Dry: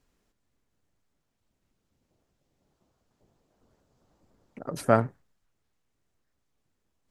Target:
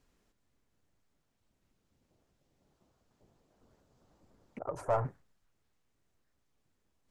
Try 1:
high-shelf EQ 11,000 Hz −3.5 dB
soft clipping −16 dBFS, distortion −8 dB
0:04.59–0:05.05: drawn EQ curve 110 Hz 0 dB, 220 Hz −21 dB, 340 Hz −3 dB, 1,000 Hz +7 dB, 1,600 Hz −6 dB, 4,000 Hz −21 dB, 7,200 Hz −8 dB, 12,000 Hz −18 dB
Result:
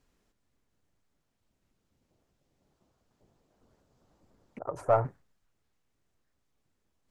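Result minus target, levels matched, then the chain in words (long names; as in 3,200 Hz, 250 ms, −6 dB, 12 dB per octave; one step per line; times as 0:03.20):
soft clipping: distortion −6 dB
high-shelf EQ 11,000 Hz −3.5 dB
soft clipping −26 dBFS, distortion −2 dB
0:04.59–0:05.05: drawn EQ curve 110 Hz 0 dB, 220 Hz −21 dB, 340 Hz −3 dB, 1,000 Hz +7 dB, 1,600 Hz −6 dB, 4,000 Hz −21 dB, 7,200 Hz −8 dB, 12,000 Hz −18 dB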